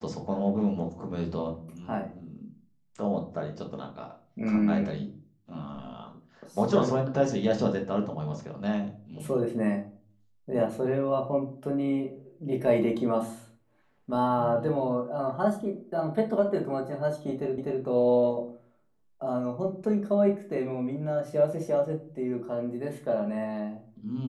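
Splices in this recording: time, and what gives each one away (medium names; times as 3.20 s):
17.58 s: repeat of the last 0.25 s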